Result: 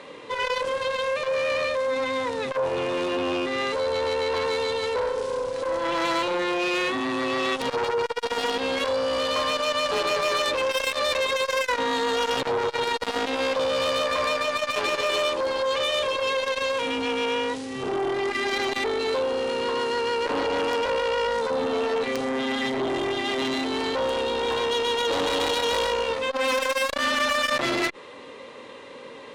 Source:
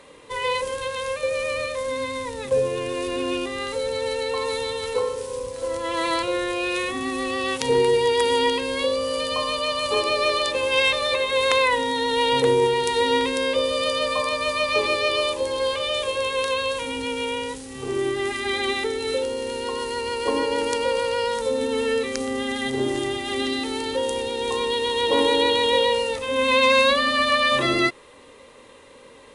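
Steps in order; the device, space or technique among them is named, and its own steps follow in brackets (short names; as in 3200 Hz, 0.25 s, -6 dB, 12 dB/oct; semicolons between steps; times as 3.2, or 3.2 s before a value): valve radio (BPF 140–4900 Hz; tube stage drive 25 dB, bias 0.2; core saturation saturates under 680 Hz); gain +6.5 dB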